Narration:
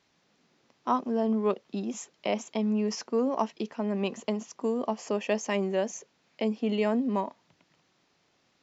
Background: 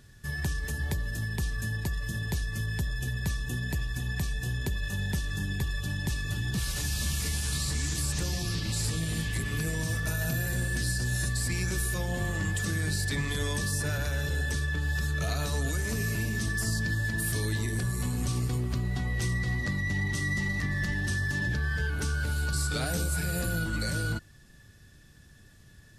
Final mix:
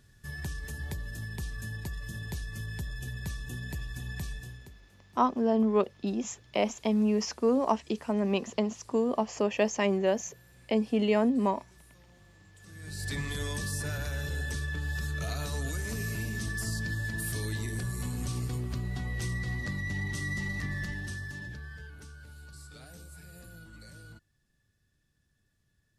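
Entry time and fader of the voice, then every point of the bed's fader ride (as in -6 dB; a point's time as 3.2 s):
4.30 s, +1.5 dB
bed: 4.32 s -6 dB
4.92 s -28 dB
12.52 s -28 dB
13.09 s -4 dB
20.72 s -4 dB
22.19 s -19.5 dB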